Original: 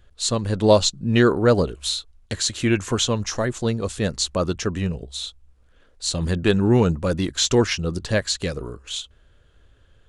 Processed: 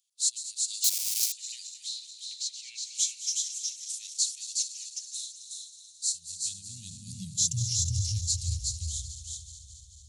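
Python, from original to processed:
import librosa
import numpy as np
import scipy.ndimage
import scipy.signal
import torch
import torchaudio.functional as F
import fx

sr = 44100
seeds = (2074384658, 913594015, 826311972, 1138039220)

y = fx.reverse_delay_fb(x, sr, ms=109, feedback_pct=82, wet_db=-12.0)
y = fx.lowpass(y, sr, hz=4100.0, slope=12, at=(1.83, 2.95))
y = y + 10.0 ** (-3.5 / 20.0) * np.pad(y, (int(367 * sr / 1000.0), 0))[:len(y)]
y = fx.schmitt(y, sr, flips_db=-26.0, at=(0.84, 1.32))
y = scipy.signal.sosfilt(scipy.signal.cheby2(4, 80, [370.0, 1300.0], 'bandstop', fs=sr, output='sos'), y)
y = fx.peak_eq(y, sr, hz=67.0, db=-13.5, octaves=0.53)
y = fx.filter_sweep_highpass(y, sr, from_hz=2200.0, to_hz=71.0, start_s=4.78, end_s=8.22, q=4.4)
y = fx.peak_eq(y, sr, hz=540.0, db=11.5, octaves=0.95, at=(7.87, 8.45))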